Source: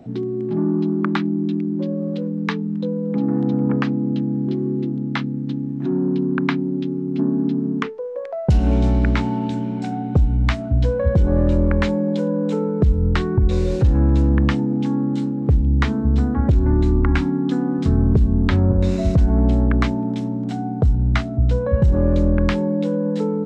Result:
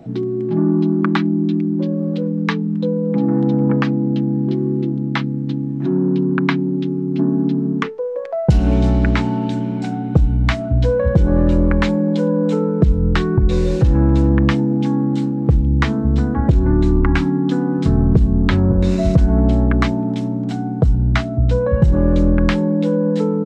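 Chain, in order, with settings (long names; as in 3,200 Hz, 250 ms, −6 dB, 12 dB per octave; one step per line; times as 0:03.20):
comb filter 6.1 ms, depth 35%
level +3 dB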